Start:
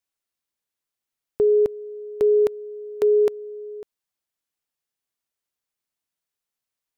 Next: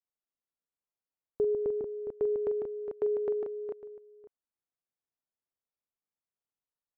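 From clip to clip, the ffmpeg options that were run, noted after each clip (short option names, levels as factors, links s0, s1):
-af "lowpass=1200,aecho=1:1:44|149|411|443:0.316|0.501|0.335|0.447,volume=0.376"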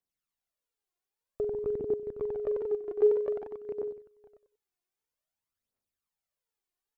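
-af "aecho=1:1:94|188|282:0.708|0.163|0.0375,aphaser=in_gain=1:out_gain=1:delay=2.9:decay=0.61:speed=0.52:type=triangular"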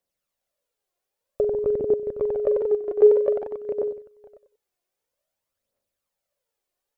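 -af "equalizer=f=560:t=o:w=0.42:g=13.5,volume=1.88"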